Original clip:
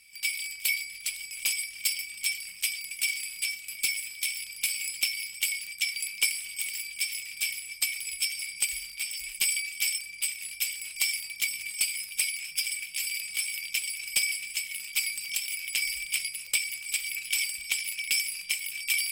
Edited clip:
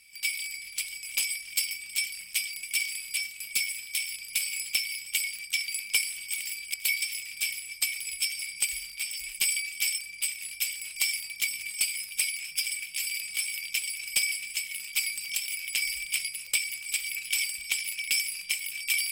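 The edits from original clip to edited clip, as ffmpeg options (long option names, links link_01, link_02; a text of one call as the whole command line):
ffmpeg -i in.wav -filter_complex "[0:a]asplit=4[link_01][link_02][link_03][link_04];[link_01]atrim=end=0.542[link_05];[link_02]atrim=start=0.818:end=7.022[link_06];[link_03]atrim=start=0.538:end=0.822[link_07];[link_04]atrim=start=7.018[link_08];[link_05][link_06]acrossfade=duration=0.004:curve1=hsin:curve2=hsin[link_09];[link_09][link_07]acrossfade=duration=0.004:curve1=hsin:curve2=hsin[link_10];[link_10][link_08]acrossfade=duration=0.004:curve1=hsin:curve2=hsin" out.wav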